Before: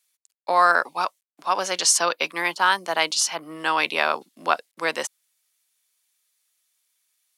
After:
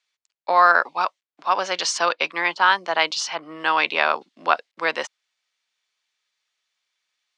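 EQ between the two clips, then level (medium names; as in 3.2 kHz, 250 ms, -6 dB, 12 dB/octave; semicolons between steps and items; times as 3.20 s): low-pass 6.7 kHz 12 dB/octave; distance through air 120 m; bass shelf 380 Hz -8 dB; +4.0 dB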